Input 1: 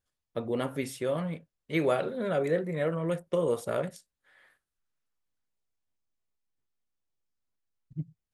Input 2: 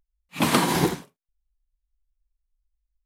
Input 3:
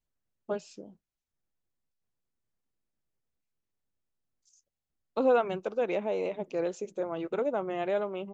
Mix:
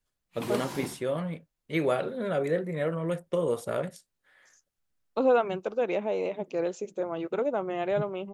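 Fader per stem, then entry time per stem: 0.0, -16.5, +1.5 dB; 0.00, 0.00, 0.00 s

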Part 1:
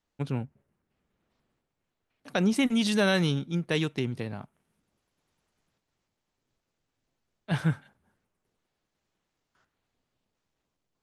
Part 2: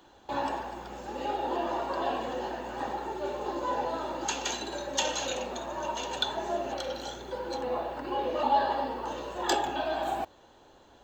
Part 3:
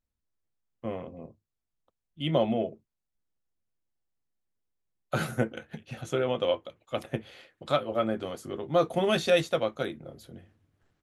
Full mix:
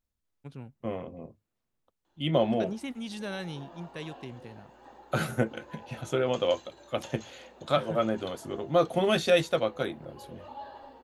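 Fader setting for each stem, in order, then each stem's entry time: -12.5, -18.0, +0.5 dB; 0.25, 2.05, 0.00 s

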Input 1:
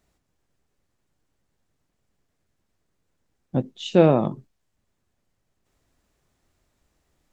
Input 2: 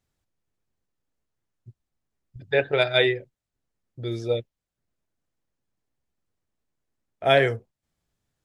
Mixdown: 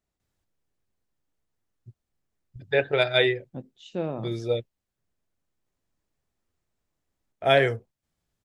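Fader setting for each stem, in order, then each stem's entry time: -14.5, -1.0 dB; 0.00, 0.20 s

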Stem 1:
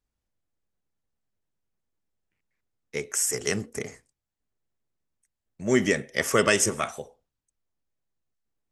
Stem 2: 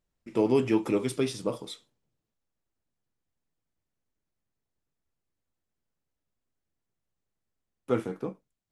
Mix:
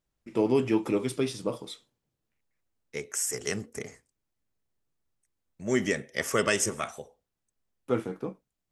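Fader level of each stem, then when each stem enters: -4.5, -0.5 dB; 0.00, 0.00 s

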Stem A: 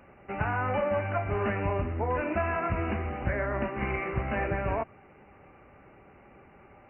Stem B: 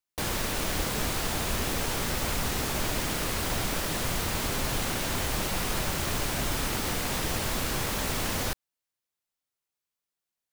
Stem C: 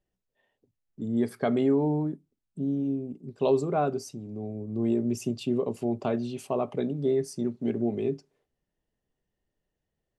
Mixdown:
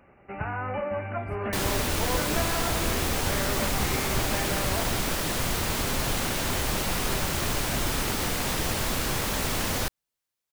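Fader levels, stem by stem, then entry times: -2.5, +2.0, -18.5 dB; 0.00, 1.35, 0.00 s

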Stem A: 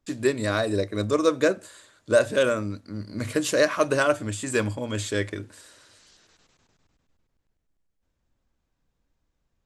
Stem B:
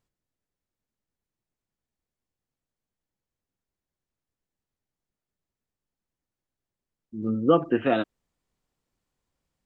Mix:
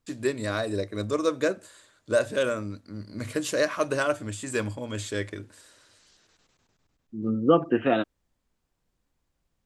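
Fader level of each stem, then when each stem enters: -4.0, 0.0 dB; 0.00, 0.00 s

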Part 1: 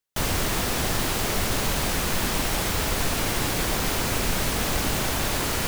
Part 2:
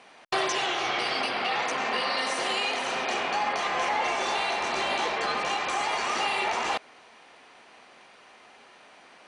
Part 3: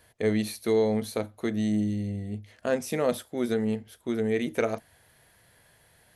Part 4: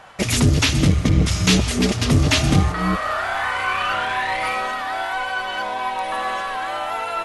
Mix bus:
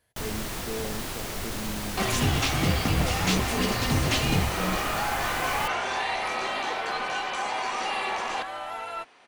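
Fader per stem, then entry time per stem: -8.5, -3.5, -12.0, -9.5 dB; 0.00, 1.65, 0.00, 1.80 s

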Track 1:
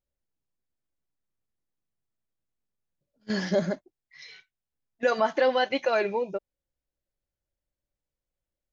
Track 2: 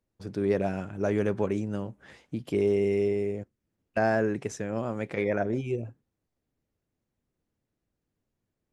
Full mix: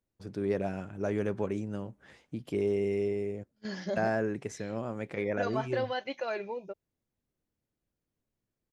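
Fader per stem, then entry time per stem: -9.5, -4.5 dB; 0.35, 0.00 s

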